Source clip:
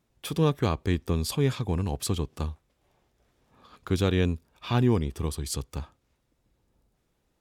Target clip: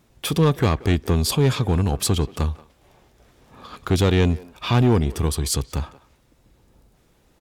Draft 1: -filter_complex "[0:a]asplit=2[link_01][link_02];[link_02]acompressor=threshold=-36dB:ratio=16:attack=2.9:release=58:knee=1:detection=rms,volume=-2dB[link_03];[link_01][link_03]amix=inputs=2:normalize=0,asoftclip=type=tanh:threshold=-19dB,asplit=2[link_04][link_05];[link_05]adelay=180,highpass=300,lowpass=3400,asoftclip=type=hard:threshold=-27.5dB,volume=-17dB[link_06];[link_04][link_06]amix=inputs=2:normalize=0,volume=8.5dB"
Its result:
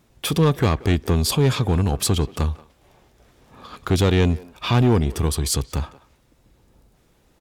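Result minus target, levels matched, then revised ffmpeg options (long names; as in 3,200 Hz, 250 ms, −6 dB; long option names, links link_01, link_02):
downward compressor: peak gain reduction −6 dB
-filter_complex "[0:a]asplit=2[link_01][link_02];[link_02]acompressor=threshold=-42.5dB:ratio=16:attack=2.9:release=58:knee=1:detection=rms,volume=-2dB[link_03];[link_01][link_03]amix=inputs=2:normalize=0,asoftclip=type=tanh:threshold=-19dB,asplit=2[link_04][link_05];[link_05]adelay=180,highpass=300,lowpass=3400,asoftclip=type=hard:threshold=-27.5dB,volume=-17dB[link_06];[link_04][link_06]amix=inputs=2:normalize=0,volume=8.5dB"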